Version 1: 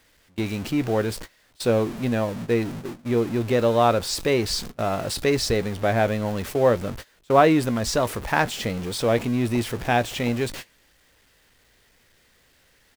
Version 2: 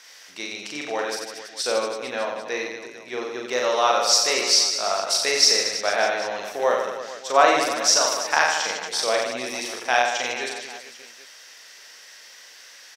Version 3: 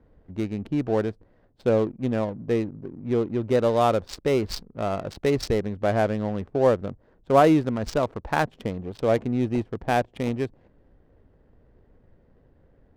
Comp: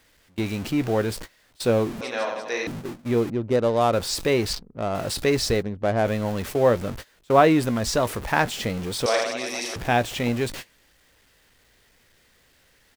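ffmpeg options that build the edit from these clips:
-filter_complex "[1:a]asplit=2[a][b];[2:a]asplit=3[c][d][e];[0:a]asplit=6[f][g][h][i][j][k];[f]atrim=end=2.012[l];[a]atrim=start=2.008:end=2.672[m];[g]atrim=start=2.668:end=3.302[n];[c]atrim=start=3.298:end=3.932[o];[h]atrim=start=3.928:end=4.532[p];[d]atrim=start=4.528:end=4.952[q];[i]atrim=start=4.948:end=5.63[r];[e]atrim=start=5.59:end=6.07[s];[j]atrim=start=6.03:end=9.062[t];[b]atrim=start=9.058:end=9.762[u];[k]atrim=start=9.758[v];[l][m]acrossfade=d=0.004:c1=hsin:c2=hsin[w];[w][n]acrossfade=d=0.004:c1=hsin:c2=hsin[x];[x][o]acrossfade=d=0.004:c1=hsin:c2=hsin[y];[y][p]acrossfade=d=0.004:c1=hsin:c2=hsin[z];[z][q]acrossfade=d=0.004:c1=hsin:c2=hsin[aa];[aa][r]acrossfade=d=0.004:c1=hsin:c2=hsin[ab];[ab][s]acrossfade=d=0.04:c1=tri:c2=tri[ac];[ac][t]acrossfade=d=0.04:c1=tri:c2=tri[ad];[ad][u]acrossfade=d=0.004:c1=hsin:c2=hsin[ae];[ae][v]acrossfade=d=0.004:c1=hsin:c2=hsin"

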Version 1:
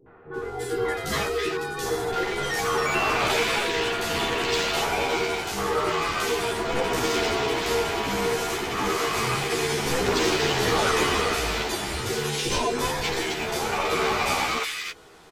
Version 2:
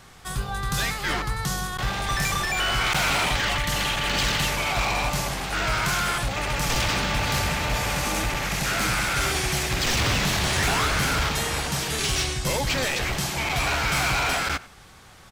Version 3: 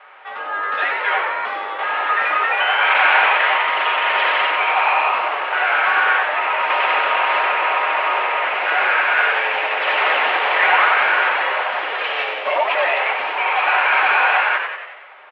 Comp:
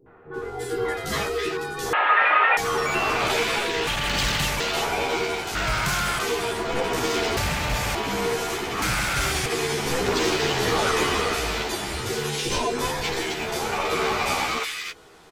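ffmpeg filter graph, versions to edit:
-filter_complex "[1:a]asplit=4[a][b][c][d];[0:a]asplit=6[e][f][g][h][i][j];[e]atrim=end=1.932[k];[2:a]atrim=start=1.928:end=2.572[l];[f]atrim=start=2.568:end=3.872[m];[a]atrim=start=3.868:end=4.602[n];[g]atrim=start=4.598:end=5.552[o];[b]atrim=start=5.548:end=6.192[p];[h]atrim=start=6.188:end=7.372[q];[c]atrim=start=7.368:end=7.952[r];[i]atrim=start=7.948:end=8.822[s];[d]atrim=start=8.818:end=9.462[t];[j]atrim=start=9.458[u];[k][l]acrossfade=d=0.004:c1=hsin:c2=hsin[v];[v][m]acrossfade=d=0.004:c1=hsin:c2=hsin[w];[w][n]acrossfade=d=0.004:c1=hsin:c2=hsin[x];[x][o]acrossfade=d=0.004:c1=hsin:c2=hsin[y];[y][p]acrossfade=d=0.004:c1=hsin:c2=hsin[z];[z][q]acrossfade=d=0.004:c1=hsin:c2=hsin[aa];[aa][r]acrossfade=d=0.004:c1=hsin:c2=hsin[ab];[ab][s]acrossfade=d=0.004:c1=hsin:c2=hsin[ac];[ac][t]acrossfade=d=0.004:c1=hsin:c2=hsin[ad];[ad][u]acrossfade=d=0.004:c1=hsin:c2=hsin"

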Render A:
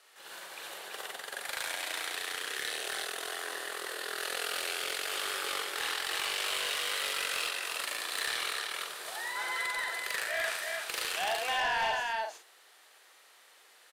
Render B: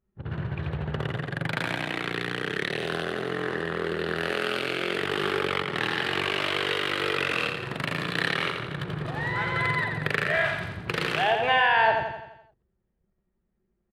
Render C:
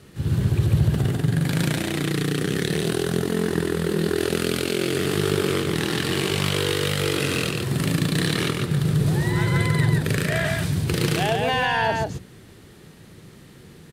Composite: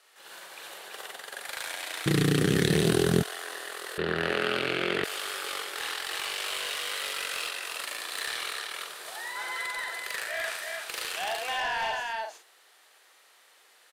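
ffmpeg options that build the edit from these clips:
-filter_complex "[0:a]asplit=3[a][b][c];[a]atrim=end=2.062[d];[2:a]atrim=start=2.058:end=3.232[e];[b]atrim=start=3.228:end=3.982[f];[1:a]atrim=start=3.978:end=5.042[g];[c]atrim=start=5.038[h];[d][e]acrossfade=d=0.004:c1=hsin:c2=hsin[i];[i][f]acrossfade=d=0.004:c1=hsin:c2=hsin[j];[j][g]acrossfade=d=0.004:c1=hsin:c2=hsin[k];[k][h]acrossfade=d=0.004:c1=hsin:c2=hsin"

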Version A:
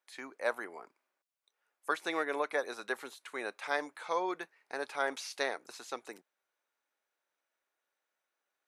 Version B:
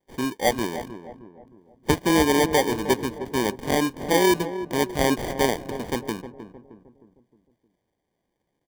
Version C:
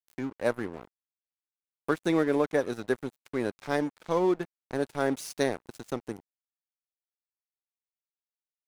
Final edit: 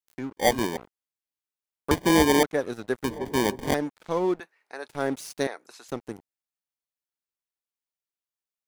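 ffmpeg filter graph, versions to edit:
-filter_complex "[1:a]asplit=3[a][b][c];[0:a]asplit=2[d][e];[2:a]asplit=6[f][g][h][i][j][k];[f]atrim=end=0.372[l];[a]atrim=start=0.368:end=0.772[m];[g]atrim=start=0.768:end=1.912[n];[b]atrim=start=1.908:end=2.432[o];[h]atrim=start=2.428:end=3.042[p];[c]atrim=start=3.038:end=3.742[q];[i]atrim=start=3.738:end=4.402[r];[d]atrim=start=4.398:end=4.882[s];[j]atrim=start=4.878:end=5.472[t];[e]atrim=start=5.468:end=5.882[u];[k]atrim=start=5.878[v];[l][m]acrossfade=d=0.004:c1=hsin:c2=hsin[w];[w][n]acrossfade=d=0.004:c1=hsin:c2=hsin[x];[x][o]acrossfade=d=0.004:c1=hsin:c2=hsin[y];[y][p]acrossfade=d=0.004:c1=hsin:c2=hsin[z];[z][q]acrossfade=d=0.004:c1=hsin:c2=hsin[aa];[aa][r]acrossfade=d=0.004:c1=hsin:c2=hsin[ab];[ab][s]acrossfade=d=0.004:c1=hsin:c2=hsin[ac];[ac][t]acrossfade=d=0.004:c1=hsin:c2=hsin[ad];[ad][u]acrossfade=d=0.004:c1=hsin:c2=hsin[ae];[ae][v]acrossfade=d=0.004:c1=hsin:c2=hsin"

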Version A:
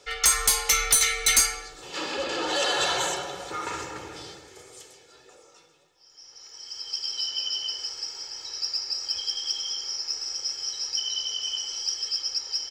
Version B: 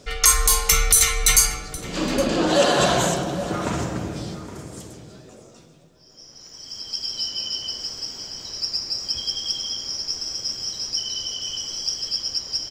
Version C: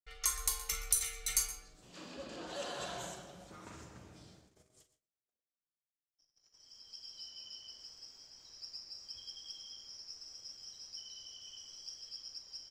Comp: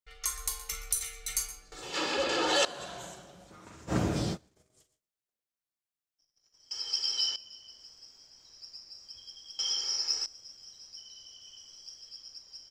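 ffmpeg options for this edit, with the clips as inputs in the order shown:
-filter_complex "[0:a]asplit=3[a][b][c];[2:a]asplit=5[d][e][f][g][h];[d]atrim=end=1.722[i];[a]atrim=start=1.718:end=2.652[j];[e]atrim=start=2.648:end=3.93[k];[1:a]atrim=start=3.87:end=4.38[l];[f]atrim=start=4.32:end=6.712[m];[b]atrim=start=6.708:end=7.362[n];[g]atrim=start=7.358:end=9.592[o];[c]atrim=start=9.588:end=10.262[p];[h]atrim=start=10.258[q];[i][j]acrossfade=d=0.004:c1=hsin:c2=hsin[r];[r][k]acrossfade=d=0.004:c1=hsin:c2=hsin[s];[s][l]acrossfade=d=0.06:c1=tri:c2=tri[t];[t][m]acrossfade=d=0.06:c1=tri:c2=tri[u];[u][n]acrossfade=d=0.004:c1=hsin:c2=hsin[v];[v][o]acrossfade=d=0.004:c1=hsin:c2=hsin[w];[w][p]acrossfade=d=0.004:c1=hsin:c2=hsin[x];[x][q]acrossfade=d=0.004:c1=hsin:c2=hsin"

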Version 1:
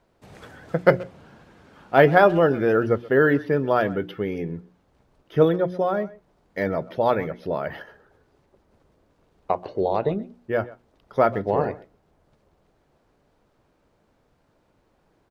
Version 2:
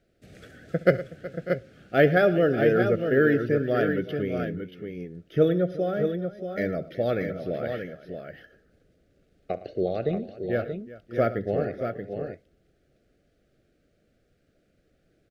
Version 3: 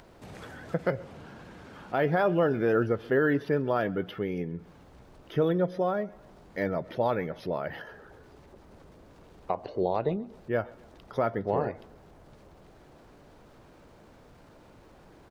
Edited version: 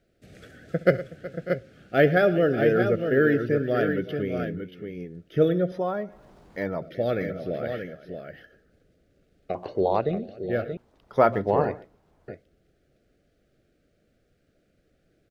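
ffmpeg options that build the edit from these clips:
-filter_complex "[0:a]asplit=2[a][b];[1:a]asplit=4[c][d][e][f];[c]atrim=end=5.722[g];[2:a]atrim=start=5.718:end=6.822[h];[d]atrim=start=6.818:end=9.552[i];[a]atrim=start=9.548:end=10.012[j];[e]atrim=start=10.008:end=10.772[k];[b]atrim=start=10.768:end=12.282[l];[f]atrim=start=12.278[m];[g][h]acrossfade=d=0.004:c1=hsin:c2=hsin[n];[n][i]acrossfade=d=0.004:c1=hsin:c2=hsin[o];[o][j]acrossfade=d=0.004:c1=hsin:c2=hsin[p];[p][k]acrossfade=d=0.004:c1=hsin:c2=hsin[q];[q][l]acrossfade=d=0.004:c1=hsin:c2=hsin[r];[r][m]acrossfade=d=0.004:c1=hsin:c2=hsin"

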